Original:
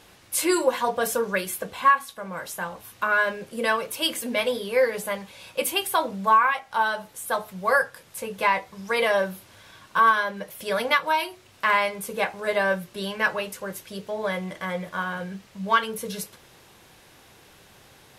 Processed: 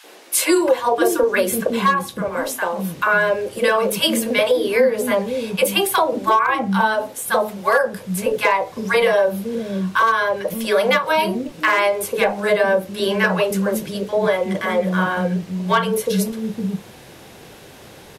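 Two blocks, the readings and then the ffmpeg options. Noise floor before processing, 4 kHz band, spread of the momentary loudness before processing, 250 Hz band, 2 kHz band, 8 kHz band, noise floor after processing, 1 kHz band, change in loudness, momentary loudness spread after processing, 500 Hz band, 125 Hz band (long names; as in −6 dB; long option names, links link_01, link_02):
−54 dBFS, +6.0 dB, 13 LU, +11.5 dB, +4.5 dB, +6.5 dB, −42 dBFS, +3.5 dB, +6.0 dB, 7 LU, +9.0 dB, +12.5 dB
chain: -filter_complex "[0:a]asoftclip=type=hard:threshold=-12dB,equalizer=frequency=320:width_type=o:width=2.9:gain=8.5,acrossover=split=300|1100[link_01][link_02][link_03];[link_02]adelay=40[link_04];[link_01]adelay=550[link_05];[link_05][link_04][link_03]amix=inputs=3:normalize=0,acompressor=threshold=-21dB:ratio=5,volume=8dB"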